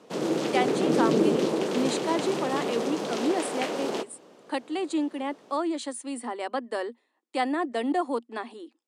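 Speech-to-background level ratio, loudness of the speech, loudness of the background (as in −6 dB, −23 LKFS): −3.0 dB, −30.5 LKFS, −27.5 LKFS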